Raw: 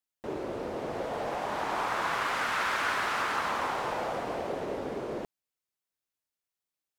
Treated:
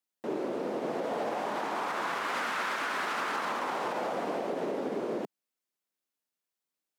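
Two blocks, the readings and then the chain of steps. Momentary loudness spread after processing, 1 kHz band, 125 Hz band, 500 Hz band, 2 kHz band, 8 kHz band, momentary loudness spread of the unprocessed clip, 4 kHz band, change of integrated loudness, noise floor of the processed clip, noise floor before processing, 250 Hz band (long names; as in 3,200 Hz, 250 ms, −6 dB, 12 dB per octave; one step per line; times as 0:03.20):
3 LU, −1.5 dB, −4.5 dB, +1.0 dB, −2.5 dB, −2.5 dB, 8 LU, −2.5 dB, −1.0 dB, below −85 dBFS, below −85 dBFS, +2.5 dB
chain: high-pass filter 190 Hz 24 dB per octave
low-shelf EQ 370 Hz +6.5 dB
brickwall limiter −23.5 dBFS, peak gain reduction 6.5 dB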